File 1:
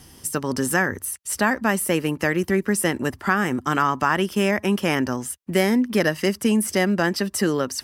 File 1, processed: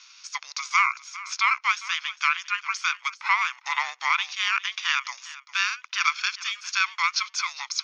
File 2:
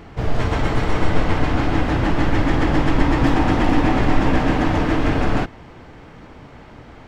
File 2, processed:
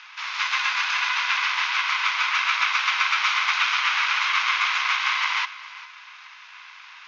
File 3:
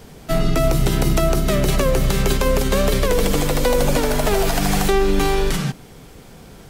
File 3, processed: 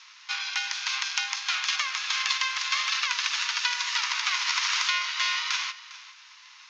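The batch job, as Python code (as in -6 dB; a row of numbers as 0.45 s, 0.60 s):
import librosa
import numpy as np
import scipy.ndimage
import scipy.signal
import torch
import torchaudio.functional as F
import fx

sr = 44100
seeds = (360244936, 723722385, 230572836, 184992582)

y = scipy.signal.sosfilt(scipy.signal.cheby1(5, 1.0, [1500.0, 6100.0], 'bandpass', fs=sr, output='sos'), x)
y = y * np.sin(2.0 * np.pi * 510.0 * np.arange(len(y)) / sr)
y = y + 10.0 ** (-17.5 / 20.0) * np.pad(y, (int(403 * sr / 1000.0), 0))[:len(y)]
y = librosa.util.normalize(y) * 10.0 ** (-6 / 20.0)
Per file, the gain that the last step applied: +7.0 dB, +12.0 dB, +6.0 dB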